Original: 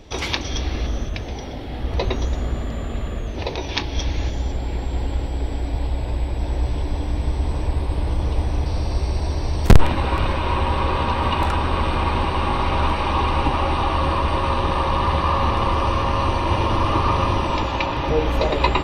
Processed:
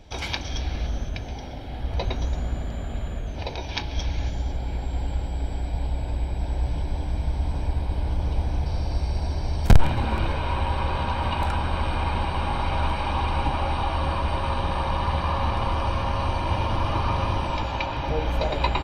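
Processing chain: comb 1.3 ms, depth 40%; on a send: frequency-shifting echo 0.137 s, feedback 63%, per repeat +110 Hz, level -21 dB; on the sum: gain -6 dB

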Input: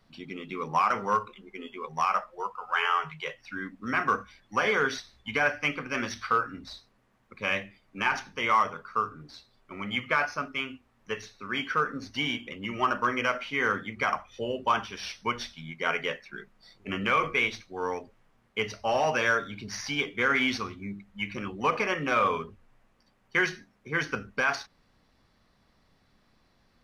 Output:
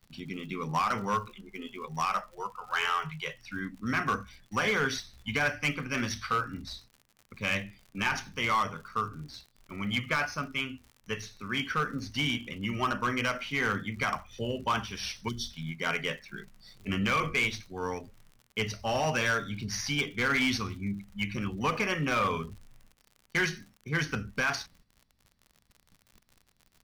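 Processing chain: tone controls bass +13 dB, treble -4 dB; gate -52 dBFS, range -12 dB; pre-emphasis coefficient 0.8; hard clip -30.5 dBFS, distortion -17 dB; spectral gain 15.28–15.5, 440–3000 Hz -23 dB; crackle 72/s -52 dBFS; gain +9 dB

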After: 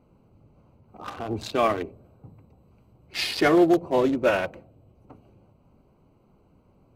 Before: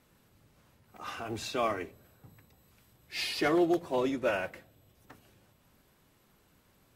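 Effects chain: Wiener smoothing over 25 samples; gain +8.5 dB

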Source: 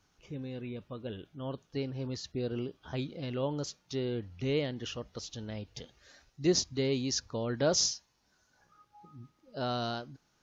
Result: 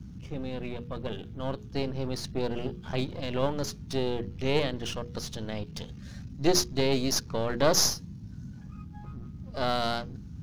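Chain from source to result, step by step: half-wave gain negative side -12 dB; notches 60/120/180/240/300/360/420/480 Hz; band noise 46–210 Hz -50 dBFS; gain +8 dB

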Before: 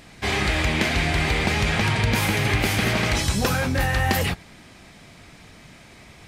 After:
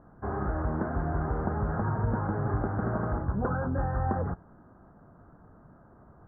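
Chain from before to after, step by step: steep low-pass 1500 Hz 72 dB/oct; gain -6 dB

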